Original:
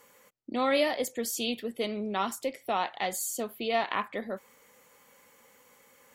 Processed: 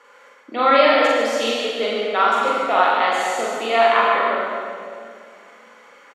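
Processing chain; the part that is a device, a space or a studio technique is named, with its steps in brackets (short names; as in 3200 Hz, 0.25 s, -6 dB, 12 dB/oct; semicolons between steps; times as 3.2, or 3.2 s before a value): station announcement (BPF 400–3900 Hz; bell 1400 Hz +8.5 dB 0.42 oct; loudspeakers at several distances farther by 15 m -1 dB, 51 m -9 dB; reverb RT60 2.3 s, pre-delay 63 ms, DRR -0.5 dB); gain +7 dB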